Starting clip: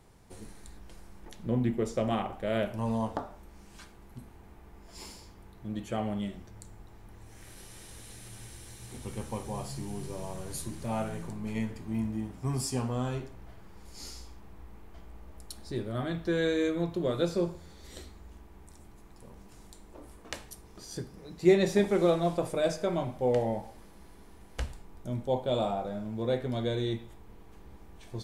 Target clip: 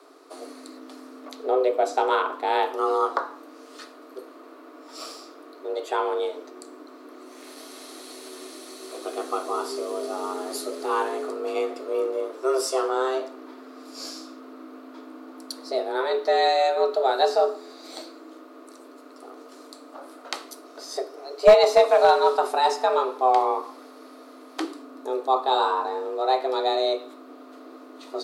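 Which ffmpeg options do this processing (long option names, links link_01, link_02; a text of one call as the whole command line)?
ffmpeg -i in.wav -af "equalizer=frequency=160:width_type=o:width=0.67:gain=8,equalizer=frequency=400:width_type=o:width=0.67:gain=6,equalizer=frequency=1000:width_type=o:width=0.67:gain=11,equalizer=frequency=4000:width_type=o:width=0.67:gain=10,afreqshift=260,aeval=exprs='clip(val(0),-1,0.299)':channel_layout=same,volume=2.5dB" out.wav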